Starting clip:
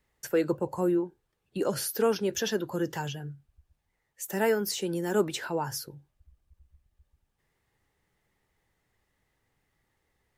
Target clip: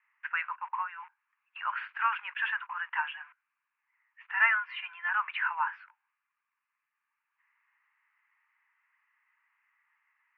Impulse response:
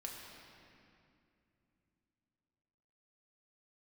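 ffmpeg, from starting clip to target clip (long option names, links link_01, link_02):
-filter_complex "[0:a]asettb=1/sr,asplit=3[link_01][link_02][link_03];[link_01]atrim=end=4.354[link_04];[link_02]atrim=start=4.35:end=5.09,asetpts=PTS-STARTPTS,afade=type=in:duration=0.004:curve=qsin,afade=type=out:start_time=0.736:duration=0.004:curve=qsin,aecho=1:1:2.9:0.73,atrim=end_sample=32634[link_05];[link_03]atrim=start=5.086[link_06];[link_04][link_05]acrossfade=duration=0.004:curve1=hsin:curve2=qsin[link_07];[link_07][link_06]acrossfade=duration=0.004:curve1=qsin:curve2=hsin,asplit=2[link_08][link_09];[link_09]aeval=exprs='val(0)*gte(abs(val(0)),0.0106)':channel_layout=same,volume=-9.5dB[link_10];[link_08][link_10]amix=inputs=2:normalize=0,asuperpass=centerf=1600:order=12:qfactor=0.94,volume=7dB"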